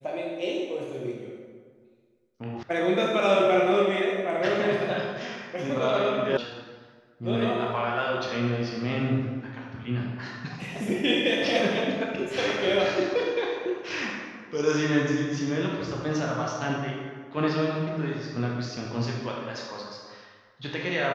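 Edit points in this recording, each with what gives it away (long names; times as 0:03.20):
0:02.63: cut off before it has died away
0:06.37: cut off before it has died away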